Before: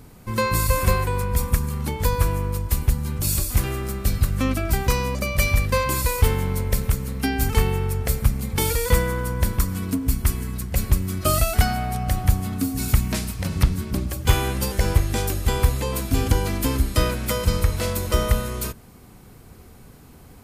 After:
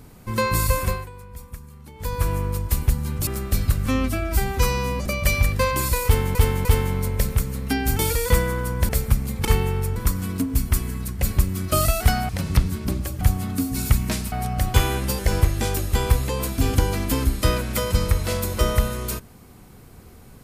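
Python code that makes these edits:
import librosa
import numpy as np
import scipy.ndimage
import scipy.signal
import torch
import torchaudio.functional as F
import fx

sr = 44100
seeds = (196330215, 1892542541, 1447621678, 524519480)

y = fx.edit(x, sr, fx.fade_down_up(start_s=0.69, length_s=1.65, db=-17.0, fade_s=0.41),
    fx.cut(start_s=3.27, length_s=0.53),
    fx.stretch_span(start_s=4.39, length_s=0.8, factor=1.5),
    fx.repeat(start_s=6.18, length_s=0.3, count=3),
    fx.swap(start_s=7.52, length_s=0.51, other_s=8.59, other_length_s=0.9),
    fx.swap(start_s=11.82, length_s=0.42, other_s=13.35, other_length_s=0.92), tone=tone)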